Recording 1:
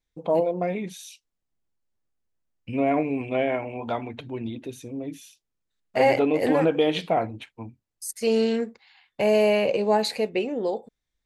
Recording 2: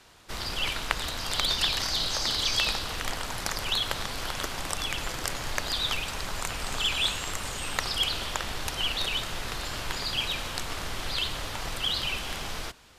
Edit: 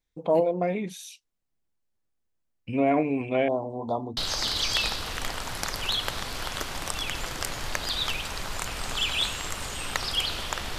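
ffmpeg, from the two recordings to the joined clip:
-filter_complex "[0:a]asettb=1/sr,asplit=3[a][b][c];[a]atrim=end=3.484[d];[b]atrim=start=3.48:end=4.17,asetpts=PTS-STARTPTS,afade=t=in:d=0.004:c=qsin,afade=t=out:st=0.686:d=0.004:c=qsin,asuperstop=centerf=2100:order=12:qfactor=0.79[e];[c]atrim=start=4.166[f];[d][e]acrossfade=d=0.004:c1=hsin:c2=qsin[g];[g][f]acrossfade=d=0.004:c1=qsin:c2=hsin,apad=whole_dur=10.78,atrim=end=10.78,atrim=end=4.172[h];[1:a]atrim=start=1.998:end=8.61[i];[h][i]acrossfade=d=0.004:c1=hsin:c2=hsin"

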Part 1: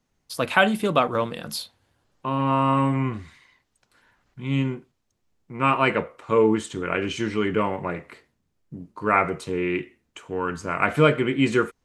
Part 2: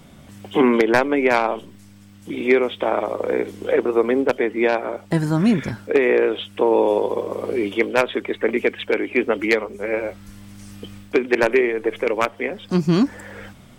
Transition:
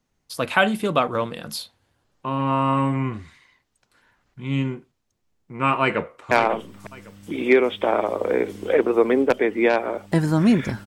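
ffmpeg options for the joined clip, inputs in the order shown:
-filter_complex "[0:a]apad=whole_dur=10.86,atrim=end=10.86,atrim=end=6.312[a];[1:a]atrim=start=1.298:end=5.85[b];[a][b]acrossfade=d=0.004:c1=hsin:c2=hsin,asplit=2[c][d];[d]afade=t=in:st=5.81:d=0.01,afade=t=out:st=6.31:d=0.01,aecho=0:1:550|1100|1650:0.375837|0.0751675|0.0150335[e];[c][e]amix=inputs=2:normalize=0"

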